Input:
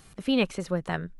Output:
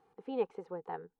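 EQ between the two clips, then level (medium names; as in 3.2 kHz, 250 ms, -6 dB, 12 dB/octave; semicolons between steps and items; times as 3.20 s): two resonant band-passes 610 Hz, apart 0.82 oct; 0.0 dB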